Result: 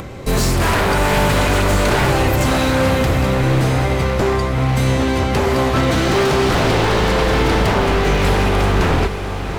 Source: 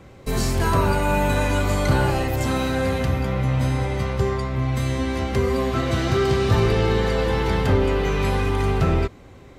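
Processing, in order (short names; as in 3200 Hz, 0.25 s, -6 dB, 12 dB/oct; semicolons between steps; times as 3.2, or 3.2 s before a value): wavefolder -18.5 dBFS; diffused feedback echo 0.734 s, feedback 45%, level -9 dB; upward compressor, threshold -32 dBFS; gain +8 dB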